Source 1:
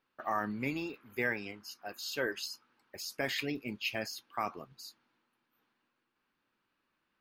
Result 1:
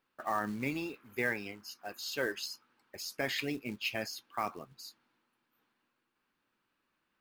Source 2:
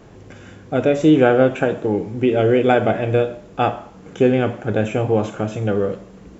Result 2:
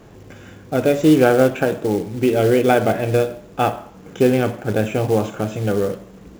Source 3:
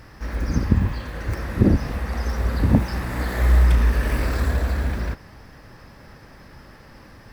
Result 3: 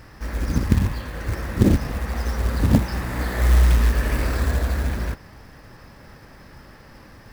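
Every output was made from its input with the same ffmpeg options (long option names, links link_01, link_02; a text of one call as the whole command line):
ffmpeg -i in.wav -af "acrusher=bits=5:mode=log:mix=0:aa=0.000001" out.wav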